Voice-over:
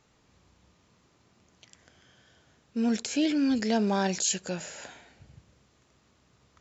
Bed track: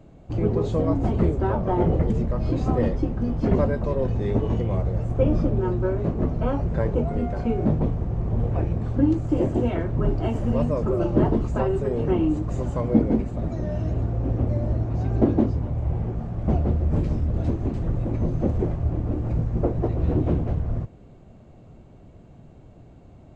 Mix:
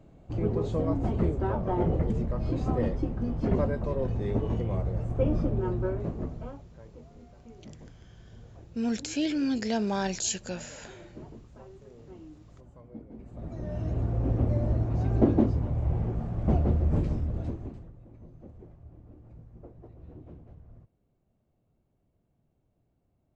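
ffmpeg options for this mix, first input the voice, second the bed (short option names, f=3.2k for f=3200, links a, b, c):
-filter_complex "[0:a]adelay=6000,volume=-2.5dB[a];[1:a]volume=18dB,afade=t=out:st=5.83:d=0.82:silence=0.0944061,afade=t=in:st=13.14:d=1.05:silence=0.0668344,afade=t=out:st=16.85:d=1.06:silence=0.0707946[b];[a][b]amix=inputs=2:normalize=0"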